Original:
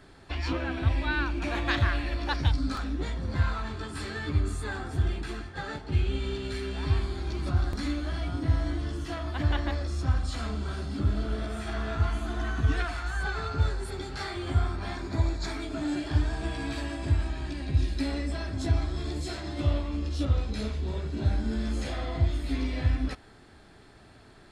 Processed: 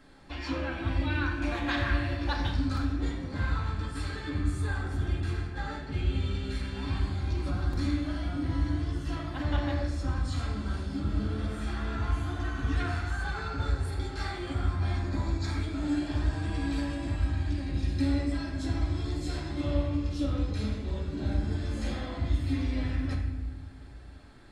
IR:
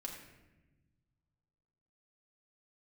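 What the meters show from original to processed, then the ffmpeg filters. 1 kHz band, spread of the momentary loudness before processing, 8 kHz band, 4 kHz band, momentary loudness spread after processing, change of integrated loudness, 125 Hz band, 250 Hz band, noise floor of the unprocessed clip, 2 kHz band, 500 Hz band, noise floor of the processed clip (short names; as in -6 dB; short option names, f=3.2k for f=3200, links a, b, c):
-1.5 dB, 6 LU, -3.0 dB, -2.5 dB, 5 LU, -1.0 dB, -1.5 dB, +1.0 dB, -53 dBFS, -2.0 dB, -2.5 dB, -40 dBFS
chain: -filter_complex "[1:a]atrim=start_sample=2205[a];[0:a][a]afir=irnorm=-1:irlink=0"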